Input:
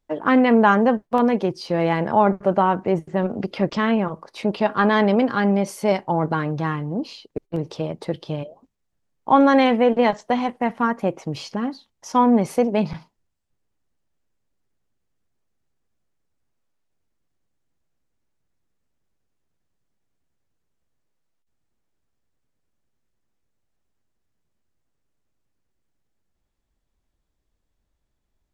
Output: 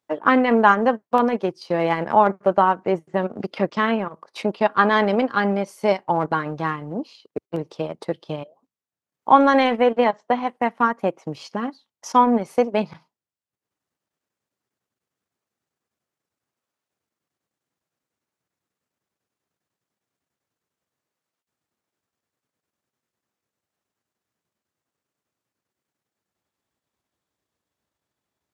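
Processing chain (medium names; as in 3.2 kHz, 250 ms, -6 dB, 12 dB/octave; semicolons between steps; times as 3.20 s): high-pass 82 Hz 24 dB/octave; peaking EQ 1.2 kHz +2.5 dB 0.65 oct; 10.04–10.47 s: low-pass 2.1 kHz 6 dB/octave; transient shaper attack +2 dB, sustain -10 dB; bass shelf 210 Hz -10 dB; trim +1 dB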